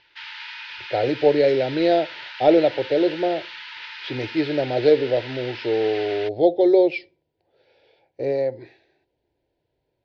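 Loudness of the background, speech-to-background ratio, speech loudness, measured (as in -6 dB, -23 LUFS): -35.0 LUFS, 14.0 dB, -21.0 LUFS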